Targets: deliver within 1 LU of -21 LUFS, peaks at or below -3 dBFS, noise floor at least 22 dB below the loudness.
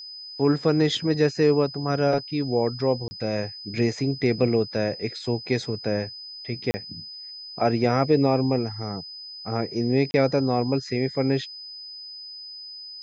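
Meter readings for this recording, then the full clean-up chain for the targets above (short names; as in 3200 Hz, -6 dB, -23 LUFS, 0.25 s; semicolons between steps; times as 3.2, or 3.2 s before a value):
dropouts 3; longest dropout 30 ms; steady tone 5000 Hz; tone level -37 dBFS; loudness -24.5 LUFS; peak -7.5 dBFS; loudness target -21.0 LUFS
-> interpolate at 3.08/6.71/10.11, 30 ms; notch 5000 Hz, Q 30; gain +3.5 dB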